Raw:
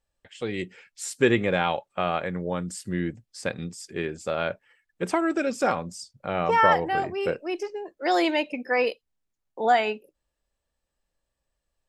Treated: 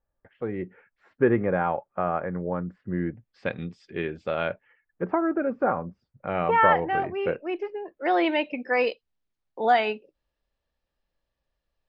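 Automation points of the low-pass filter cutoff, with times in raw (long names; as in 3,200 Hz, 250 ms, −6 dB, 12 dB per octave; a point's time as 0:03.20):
low-pass filter 24 dB per octave
0:02.95 1,600 Hz
0:03.49 3,400 Hz
0:04.42 3,400 Hz
0:05.09 1,500 Hz
0:05.94 1,500 Hz
0:06.40 2,800 Hz
0:08.10 2,800 Hz
0:08.87 5,000 Hz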